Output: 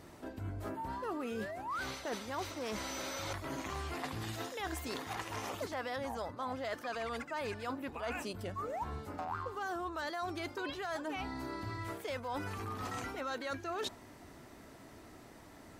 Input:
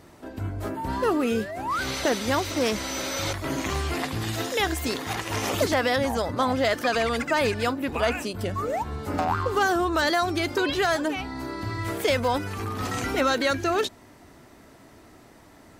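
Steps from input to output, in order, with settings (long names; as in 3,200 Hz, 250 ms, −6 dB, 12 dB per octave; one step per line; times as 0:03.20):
dynamic equaliser 990 Hz, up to +6 dB, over −37 dBFS, Q 0.96
reversed playback
downward compressor 6 to 1, threshold −34 dBFS, peak gain reduction 18.5 dB
reversed playback
level −3.5 dB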